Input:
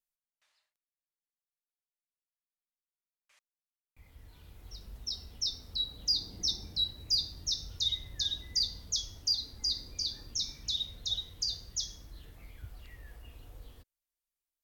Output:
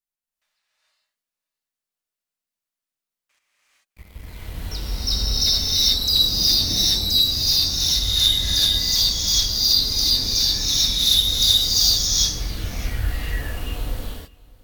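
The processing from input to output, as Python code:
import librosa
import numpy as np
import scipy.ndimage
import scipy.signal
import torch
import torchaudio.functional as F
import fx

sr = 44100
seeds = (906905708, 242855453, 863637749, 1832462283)

y = fx.leveller(x, sr, passes=3)
y = y + 10.0 ** (-23.0 / 20.0) * np.pad(y, (int(609 * sr / 1000.0), 0))[:len(y)]
y = fx.rev_gated(y, sr, seeds[0], gate_ms=470, shape='rising', drr_db=-8.0)
y = fx.rider(y, sr, range_db=4, speed_s=2.0)
y = fx.high_shelf(y, sr, hz=9000.0, db=5.5, at=(10.99, 12.07))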